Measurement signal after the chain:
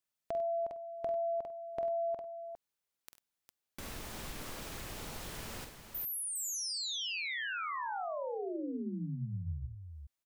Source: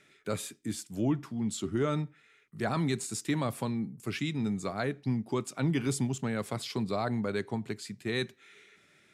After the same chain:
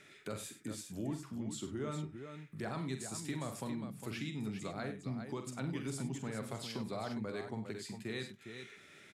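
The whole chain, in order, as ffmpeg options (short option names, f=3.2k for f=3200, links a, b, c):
-af "acompressor=threshold=-52dB:ratio=2,aecho=1:1:46|68|97|406:0.398|0.141|0.2|0.398,volume=3dB"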